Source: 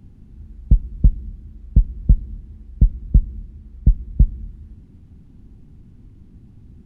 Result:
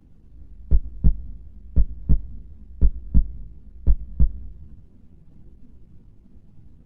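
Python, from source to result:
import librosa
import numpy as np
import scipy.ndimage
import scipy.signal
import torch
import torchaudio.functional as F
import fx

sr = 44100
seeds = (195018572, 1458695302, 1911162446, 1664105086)

y = np.where(x < 0.0, 10.0 ** (-12.0 / 20.0) * x, x)
y = fx.chorus_voices(y, sr, voices=6, hz=0.39, base_ms=16, depth_ms=4.3, mix_pct=55)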